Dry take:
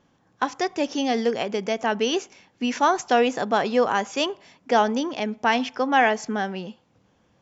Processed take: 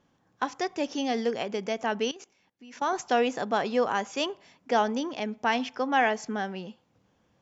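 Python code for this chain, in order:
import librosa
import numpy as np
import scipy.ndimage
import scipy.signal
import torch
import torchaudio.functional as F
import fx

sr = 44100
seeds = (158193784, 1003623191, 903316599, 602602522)

y = fx.level_steps(x, sr, step_db=21, at=(2.11, 2.93))
y = F.gain(torch.from_numpy(y), -5.0).numpy()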